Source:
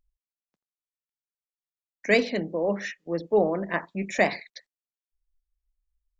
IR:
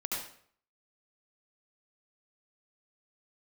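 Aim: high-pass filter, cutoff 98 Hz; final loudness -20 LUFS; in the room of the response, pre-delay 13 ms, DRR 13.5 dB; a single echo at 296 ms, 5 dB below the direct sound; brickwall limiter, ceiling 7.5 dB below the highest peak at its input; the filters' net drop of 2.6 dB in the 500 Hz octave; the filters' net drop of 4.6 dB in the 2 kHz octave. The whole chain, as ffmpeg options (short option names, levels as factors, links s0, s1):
-filter_complex "[0:a]highpass=98,equalizer=f=500:t=o:g=-3,equalizer=f=2000:t=o:g=-5,alimiter=limit=0.126:level=0:latency=1,aecho=1:1:296:0.562,asplit=2[s0][s1];[1:a]atrim=start_sample=2205,adelay=13[s2];[s1][s2]afir=irnorm=-1:irlink=0,volume=0.133[s3];[s0][s3]amix=inputs=2:normalize=0,volume=3.35"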